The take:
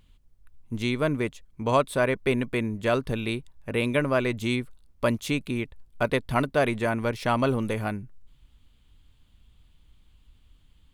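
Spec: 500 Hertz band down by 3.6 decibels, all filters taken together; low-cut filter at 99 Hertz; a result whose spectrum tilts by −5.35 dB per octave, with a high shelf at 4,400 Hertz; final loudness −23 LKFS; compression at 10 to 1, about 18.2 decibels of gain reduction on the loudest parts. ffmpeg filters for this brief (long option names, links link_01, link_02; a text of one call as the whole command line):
ffmpeg -i in.wav -af "highpass=99,equalizer=frequency=500:width_type=o:gain=-4.5,highshelf=frequency=4400:gain=-9,acompressor=threshold=-39dB:ratio=10,volume=21dB" out.wav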